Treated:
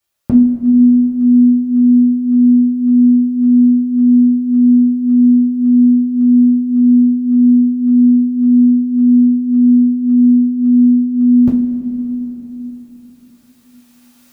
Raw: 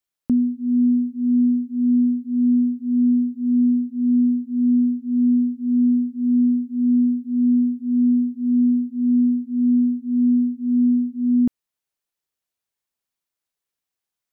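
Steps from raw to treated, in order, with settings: recorder AGC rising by 8.1 dB/s; two-slope reverb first 0.3 s, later 4.7 s, from -18 dB, DRR -6.5 dB; trim +5.5 dB

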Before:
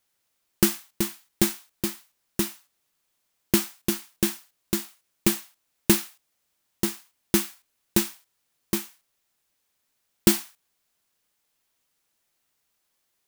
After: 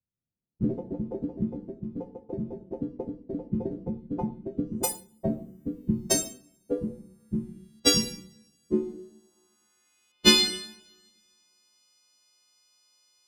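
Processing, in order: partials quantised in pitch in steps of 3 st; low-pass sweep 150 Hz -> 5.5 kHz, 8.13–10.53 s; two-slope reverb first 0.77 s, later 2.1 s, from -27 dB, DRR 2.5 dB; ever faster or slower copies 174 ms, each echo +5 st, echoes 3; trim -1.5 dB

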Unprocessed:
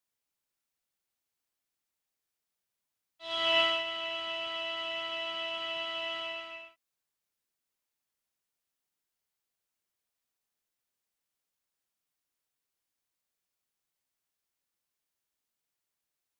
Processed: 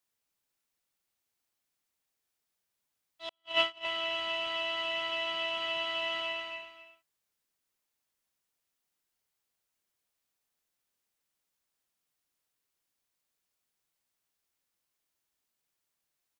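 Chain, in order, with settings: 3.29–3.85 s: gate -24 dBFS, range -52 dB; delay 265 ms -11.5 dB; trim +2.5 dB

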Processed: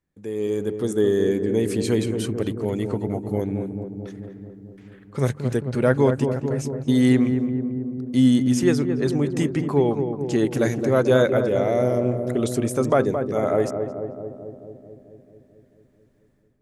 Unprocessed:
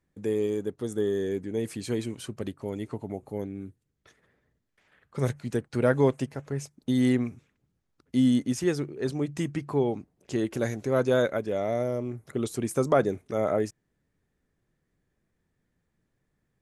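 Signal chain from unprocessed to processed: level rider gain up to 13 dB; on a send: filtered feedback delay 220 ms, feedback 74%, low-pass 1 kHz, level -6 dB; on the sum: trim -5 dB

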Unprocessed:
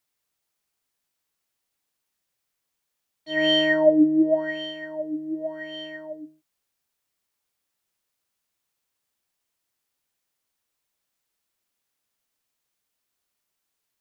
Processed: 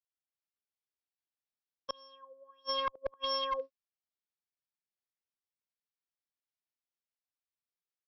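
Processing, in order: gate with hold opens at -37 dBFS; level rider gain up to 6.5 dB; inverted gate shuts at -18 dBFS, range -39 dB; one-sided clip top -27 dBFS; brick-wall FIR low-pass 3.4 kHz; speed mistake 45 rpm record played at 78 rpm; trim -2.5 dB

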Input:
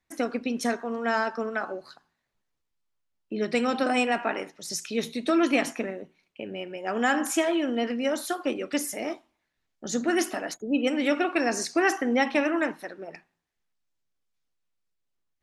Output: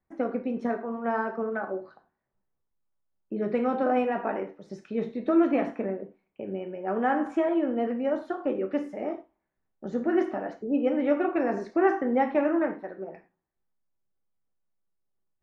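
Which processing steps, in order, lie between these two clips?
low-pass 1.1 kHz 12 dB/octave; gated-style reverb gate 130 ms falling, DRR 5 dB

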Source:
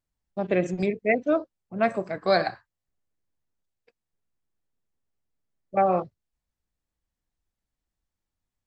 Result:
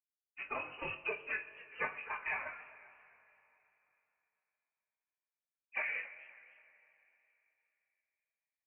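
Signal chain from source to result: fade-in on the opening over 0.92 s; gate with hold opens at -46 dBFS; high-pass 1.5 kHz 12 dB/octave; compression 12:1, threshold -38 dBFS, peak gain reduction 16 dB; whisper effect; formant-preserving pitch shift +9.5 st; two-slope reverb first 0.27 s, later 3.3 s, from -18 dB, DRR 6 dB; frequency shift -140 Hz; doubling 20 ms -5.5 dB; frequency inversion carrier 2.9 kHz; modulated delay 264 ms, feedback 40%, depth 149 cents, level -19.5 dB; trim +4 dB

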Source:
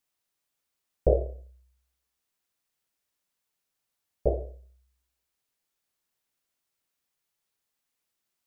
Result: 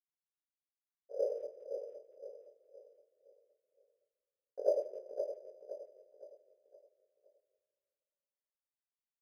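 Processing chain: steep high-pass 510 Hz 48 dB/octave; expander -56 dBFS; compressor with a negative ratio -31 dBFS, ratio -1; granulator, grains 20 per s; trance gate "xx.xxx.x..x" 192 bpm -12 dB; chorus 1.8 Hz, delay 18 ms, depth 2.8 ms; on a send: feedback delay 474 ms, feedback 40%, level -7.5 dB; on the sum: simulated room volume 2900 m³, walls mixed, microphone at 0.58 m; speed mistake 48 kHz file played as 44.1 kHz; decimation joined by straight lines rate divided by 8×; trim +6.5 dB

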